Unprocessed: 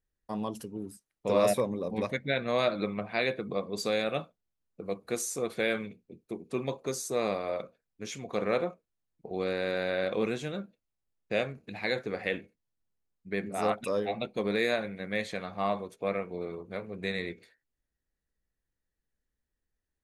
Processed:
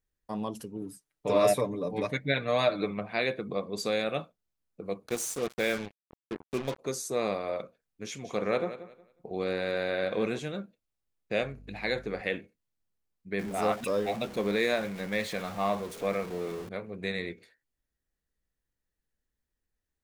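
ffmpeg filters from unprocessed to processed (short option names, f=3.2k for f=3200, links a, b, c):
-filter_complex "[0:a]asettb=1/sr,asplit=3[a][b][c];[a]atrim=end=0.814[d];[b]atrim=start=0.81:end=2.91,asetpts=PTS-STARTPTS,afade=t=in:d=0.004:c=qsin,afade=t=out:st=2.096:d=0.004:c=qsin,aecho=1:1:6.8:0.65,atrim=end_sample=92610[e];[c]atrim=start=2.906[f];[d][e]acrossfade=d=0.004:c1=hsin:c2=qsin[g];[g][f]acrossfade=d=0.004:c1=qsin:c2=hsin,asplit=3[h][i][j];[h]afade=t=out:st=5.06:d=0.02[k];[i]acrusher=bits=5:mix=0:aa=0.5,afade=t=in:st=5.06:d=0.02,afade=t=out:st=6.78:d=0.02[l];[j]afade=t=in:st=6.78:d=0.02[m];[k][l][m]amix=inputs=3:normalize=0,asettb=1/sr,asplit=3[n][o][p];[n]atrim=end=8.064[q];[o]atrim=start=8.06:end=10.39,asetpts=PTS-STARTPTS,afade=t=in:d=0.004:c=qsin,afade=t=out:st=2.326:d=0.004:c=qsin,aecho=1:1:182|364|546:0.211|0.0486|0.0112,atrim=end_sample=102753[r];[p]atrim=start=10.386[s];[q][r]acrossfade=d=0.004:c1=hsin:c2=qsin[t];[t][s]acrossfade=d=0.004:c1=qsin:c2=hsin,asettb=1/sr,asplit=3[u][v][w];[u]atrim=end=11.424[x];[v]atrim=start=11.42:end=12.21,asetpts=PTS-STARTPTS,afade=t=in:d=0.004:c=qsin,afade=t=out:st=0.786:d=0.004:c=qsin,aeval=exprs='val(0)+0.00355*(sin(2*PI*50*n/s)+sin(2*PI*2*50*n/s)/2+sin(2*PI*3*50*n/s)/3+sin(2*PI*4*50*n/s)/4+sin(2*PI*5*50*n/s)/5)':c=same[y];[w]atrim=start=12.206[z];[x][y]acrossfade=d=0.004:c1=hsin:c2=qsin[aa];[aa][z]acrossfade=d=0.004:c1=qsin:c2=hsin,asettb=1/sr,asplit=3[ab][ac][ad];[ab]atrim=end=13.394[ae];[ac]atrim=start=13.39:end=16.69,asetpts=PTS-STARTPTS,afade=t=in:d=0.004:c=qsin,afade=t=out:st=3.296:d=0.004:c=qsin,aeval=exprs='val(0)+0.5*0.0112*sgn(val(0))':c=same[af];[ad]atrim=start=16.686[ag];[ae][af]acrossfade=d=0.004:c1=hsin:c2=qsin[ah];[ah][ag]acrossfade=d=0.004:c1=qsin:c2=hsin"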